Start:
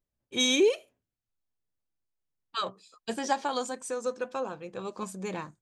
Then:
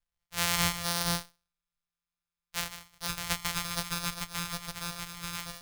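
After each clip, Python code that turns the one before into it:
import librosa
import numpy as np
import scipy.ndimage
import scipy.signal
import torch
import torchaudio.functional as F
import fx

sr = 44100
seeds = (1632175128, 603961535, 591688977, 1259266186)

y = np.r_[np.sort(x[:len(x) // 256 * 256].reshape(-1, 256), axis=1).ravel(), x[len(x) // 256 * 256:]]
y = fx.tone_stack(y, sr, knobs='10-0-10')
y = fx.echo_multitap(y, sr, ms=(150, 465, 471), db=(-11.5, -9.5, -3.0))
y = y * librosa.db_to_amplitude(5.5)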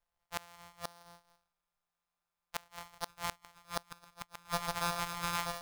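y = fx.peak_eq(x, sr, hz=790.0, db=13.0, octaves=1.8)
y = fx.gate_flip(y, sr, shuts_db=-14.0, range_db=-31)
y = y * librosa.db_to_amplitude(-1.5)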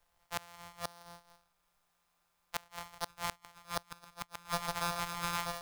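y = fx.band_squash(x, sr, depth_pct=40)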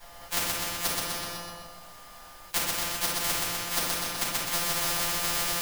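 y = fx.echo_feedback(x, sr, ms=126, feedback_pct=49, wet_db=-7)
y = fx.room_shoebox(y, sr, seeds[0], volume_m3=380.0, walls='furnished', distance_m=8.1)
y = fx.spectral_comp(y, sr, ratio=4.0)
y = y * librosa.db_to_amplitude(5.0)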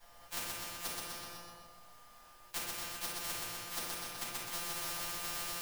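y = fx.comb_fb(x, sr, f0_hz=120.0, decay_s=0.17, harmonics='all', damping=0.0, mix_pct=70)
y = y * librosa.db_to_amplitude(-6.0)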